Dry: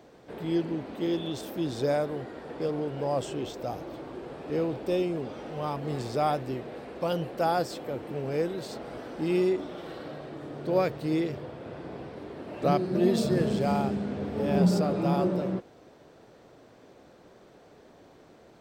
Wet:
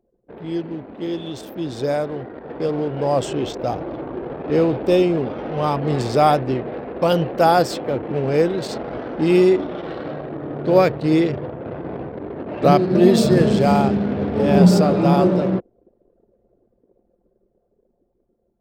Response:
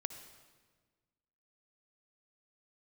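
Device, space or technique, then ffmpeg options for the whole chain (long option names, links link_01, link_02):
voice memo with heavy noise removal: -af "anlmdn=0.158,dynaudnorm=framelen=790:gausssize=7:maxgain=10dB,volume=2dB"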